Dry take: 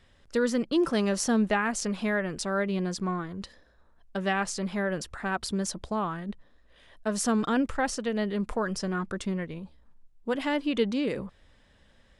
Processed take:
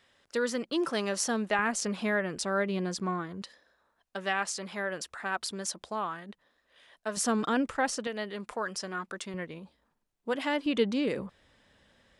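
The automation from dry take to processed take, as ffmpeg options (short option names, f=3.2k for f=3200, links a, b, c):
-af "asetnsamples=n=441:p=0,asendcmd='1.59 highpass f 200;3.42 highpass f 710;7.17 highpass f 260;8.07 highpass f 780;9.34 highpass f 350;10.66 highpass f 140',highpass=f=530:p=1"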